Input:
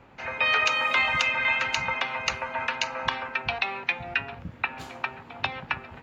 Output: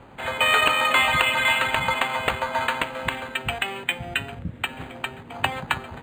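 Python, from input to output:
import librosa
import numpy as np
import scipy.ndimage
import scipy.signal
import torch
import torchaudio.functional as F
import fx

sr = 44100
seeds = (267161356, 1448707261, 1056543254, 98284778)

y = fx.peak_eq(x, sr, hz=1000.0, db=-8.5, octaves=1.4, at=(2.82, 5.31))
y = np.interp(np.arange(len(y)), np.arange(len(y))[::8], y[::8])
y = F.gain(torch.from_numpy(y), 7.0).numpy()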